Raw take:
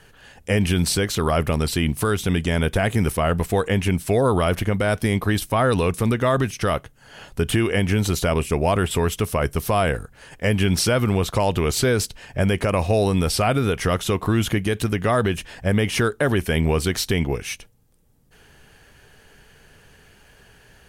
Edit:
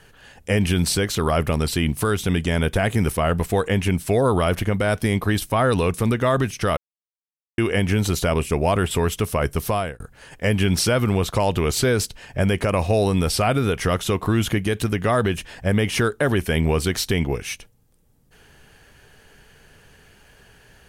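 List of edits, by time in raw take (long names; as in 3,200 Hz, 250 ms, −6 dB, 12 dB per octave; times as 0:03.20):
0:06.77–0:07.58: silence
0:09.67–0:10.00: fade out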